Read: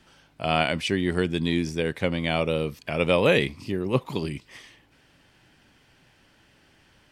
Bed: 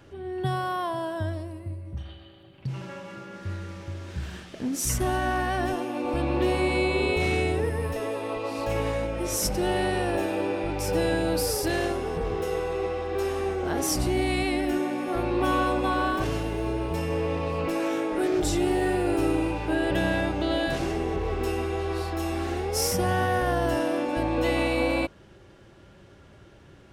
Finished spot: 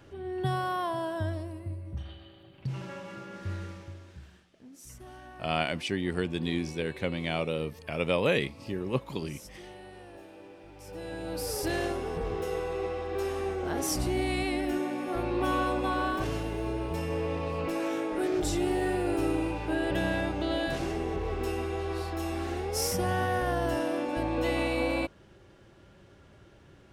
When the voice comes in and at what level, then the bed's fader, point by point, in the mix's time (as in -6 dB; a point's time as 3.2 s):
5.00 s, -6.0 dB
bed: 3.64 s -2 dB
4.51 s -22 dB
10.67 s -22 dB
11.65 s -4 dB